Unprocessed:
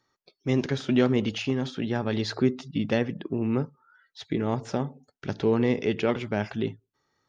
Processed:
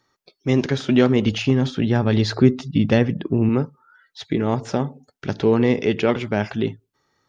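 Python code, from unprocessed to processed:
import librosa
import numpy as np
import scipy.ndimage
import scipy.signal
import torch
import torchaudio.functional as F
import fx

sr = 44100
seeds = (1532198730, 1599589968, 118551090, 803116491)

y = fx.low_shelf(x, sr, hz=130.0, db=11.5, at=(1.26, 3.49))
y = y * librosa.db_to_amplitude(6.0)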